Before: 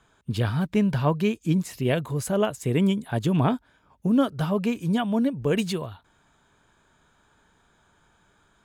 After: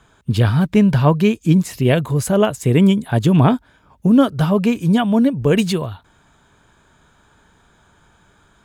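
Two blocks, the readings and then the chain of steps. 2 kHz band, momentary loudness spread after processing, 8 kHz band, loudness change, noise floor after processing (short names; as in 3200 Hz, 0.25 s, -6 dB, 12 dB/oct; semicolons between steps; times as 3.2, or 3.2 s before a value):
+7.5 dB, 5 LU, +7.5 dB, +9.0 dB, -56 dBFS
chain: bell 70 Hz +3.5 dB 2.9 oct; gain +7.5 dB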